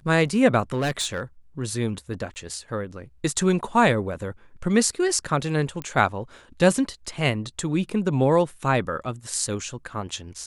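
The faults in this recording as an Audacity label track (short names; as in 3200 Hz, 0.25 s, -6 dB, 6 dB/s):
0.730000	1.210000	clipped -20.5 dBFS
2.340000	2.360000	gap 19 ms
5.820000	5.820000	pop -17 dBFS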